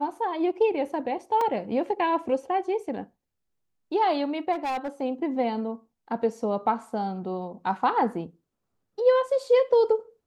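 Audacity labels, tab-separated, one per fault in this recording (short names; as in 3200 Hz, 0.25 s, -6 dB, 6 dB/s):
1.410000	1.410000	gap 2.8 ms
4.520000	4.890000	clipped -26 dBFS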